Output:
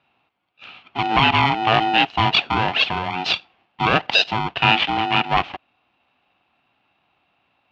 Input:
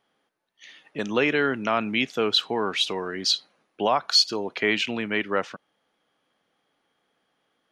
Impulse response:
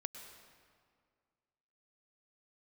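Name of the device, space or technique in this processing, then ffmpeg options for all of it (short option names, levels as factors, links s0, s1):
ring modulator pedal into a guitar cabinet: -filter_complex "[0:a]asettb=1/sr,asplit=3[s0][s1][s2];[s0]atrim=end=2.614[s3];[s1]atrim=start=2.61:end=3.94,asetpts=PTS-STARTPTS,afade=t=in:d=0.004:c=qsin,afade=t=out:st=1.326:d=0.004:c=qsin,equalizer=f=710:w=2.1:g=-4.5[s4];[s2]atrim=start=3.936[s5];[s3][s4]acrossfade=d=0.004:c1=hsin:c2=qsin[s6];[s6][s5]acrossfade=d=0.004:c1=qsin:c2=hsin,aeval=exprs='val(0)*sgn(sin(2*PI*550*n/s))':c=same,highpass=84,equalizer=f=740:t=q:w=4:g=8,equalizer=f=1900:t=q:w=4:g=-5,equalizer=f=2700:t=q:w=4:g=8,lowpass=f=3600:w=0.5412,lowpass=f=3600:w=1.3066,volume=1.78"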